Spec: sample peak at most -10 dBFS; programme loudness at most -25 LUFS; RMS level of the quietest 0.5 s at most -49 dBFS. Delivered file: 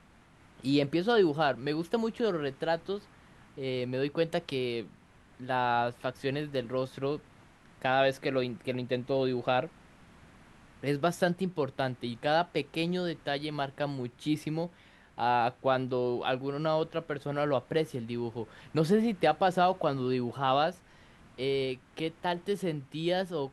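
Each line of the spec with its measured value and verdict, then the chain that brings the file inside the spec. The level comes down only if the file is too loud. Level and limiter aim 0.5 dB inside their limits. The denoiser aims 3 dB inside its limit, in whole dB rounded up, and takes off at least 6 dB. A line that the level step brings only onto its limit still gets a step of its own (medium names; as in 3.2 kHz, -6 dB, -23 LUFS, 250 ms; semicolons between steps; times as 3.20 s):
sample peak -13.0 dBFS: pass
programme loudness -31.0 LUFS: pass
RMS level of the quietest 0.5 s -59 dBFS: pass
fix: none needed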